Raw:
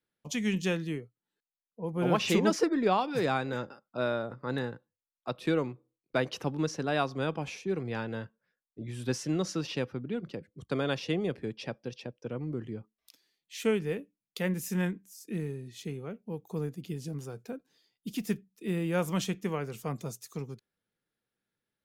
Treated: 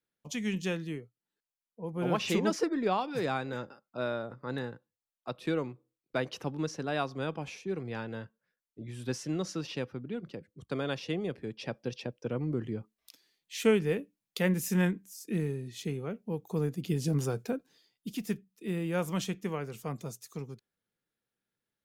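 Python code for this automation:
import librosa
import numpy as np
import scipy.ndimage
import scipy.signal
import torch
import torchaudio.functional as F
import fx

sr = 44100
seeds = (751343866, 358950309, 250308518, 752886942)

y = fx.gain(x, sr, db=fx.line((11.45, -3.0), (11.88, 3.0), (16.6, 3.0), (17.25, 10.0), (18.18, -2.0)))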